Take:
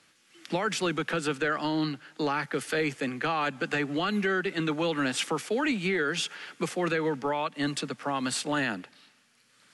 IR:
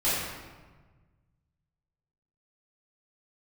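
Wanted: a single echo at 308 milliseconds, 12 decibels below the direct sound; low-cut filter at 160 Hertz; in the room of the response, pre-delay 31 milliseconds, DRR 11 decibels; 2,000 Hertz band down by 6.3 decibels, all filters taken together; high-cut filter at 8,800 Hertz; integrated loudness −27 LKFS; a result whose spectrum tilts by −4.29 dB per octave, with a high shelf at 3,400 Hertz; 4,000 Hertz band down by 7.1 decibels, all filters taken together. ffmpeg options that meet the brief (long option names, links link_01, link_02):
-filter_complex "[0:a]highpass=160,lowpass=8800,equalizer=frequency=2000:width_type=o:gain=-7,highshelf=frequency=3400:gain=-3,equalizer=frequency=4000:width_type=o:gain=-4.5,aecho=1:1:308:0.251,asplit=2[link_01][link_02];[1:a]atrim=start_sample=2205,adelay=31[link_03];[link_02][link_03]afir=irnorm=-1:irlink=0,volume=-23.5dB[link_04];[link_01][link_04]amix=inputs=2:normalize=0,volume=4dB"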